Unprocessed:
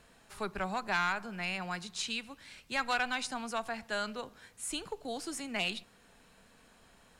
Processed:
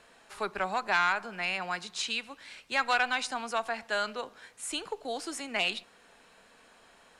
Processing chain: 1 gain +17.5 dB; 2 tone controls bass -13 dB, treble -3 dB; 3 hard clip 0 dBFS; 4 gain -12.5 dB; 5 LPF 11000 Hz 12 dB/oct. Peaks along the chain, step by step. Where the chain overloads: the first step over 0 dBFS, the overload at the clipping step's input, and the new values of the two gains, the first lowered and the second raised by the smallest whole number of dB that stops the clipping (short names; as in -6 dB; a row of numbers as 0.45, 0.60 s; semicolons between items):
-3.5, -3.5, -3.5, -16.0, -16.0 dBFS; no overload